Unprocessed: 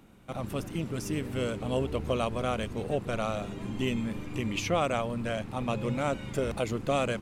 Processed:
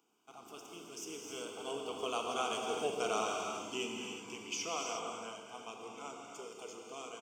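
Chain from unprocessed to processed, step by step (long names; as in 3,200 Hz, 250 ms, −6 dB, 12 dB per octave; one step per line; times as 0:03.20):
source passing by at 0:02.98, 12 m/s, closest 8.4 metres
high-pass with resonance 480 Hz, resonance Q 4.9
high shelf with overshoot 3,000 Hz +7.5 dB, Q 1.5
phaser with its sweep stopped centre 2,700 Hz, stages 8
single-tap delay 263 ms −14 dB
reverb whose tail is shaped and stops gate 400 ms flat, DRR 0.5 dB
level −1.5 dB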